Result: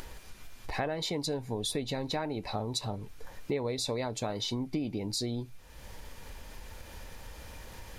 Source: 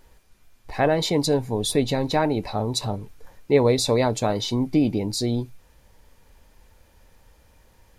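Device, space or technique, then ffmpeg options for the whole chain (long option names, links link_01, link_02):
upward and downward compression: -af "equalizer=frequency=3100:width=0.45:gain=3.5,acompressor=mode=upward:threshold=-33dB:ratio=2.5,acompressor=threshold=-30dB:ratio=5,volume=-1dB"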